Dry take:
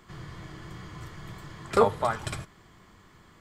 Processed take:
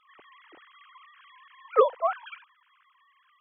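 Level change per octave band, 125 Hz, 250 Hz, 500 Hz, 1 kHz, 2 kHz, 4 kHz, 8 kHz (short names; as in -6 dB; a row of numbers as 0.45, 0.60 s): under -40 dB, under -15 dB, +1.0 dB, 0.0 dB, -4.5 dB, -7.0 dB, under -35 dB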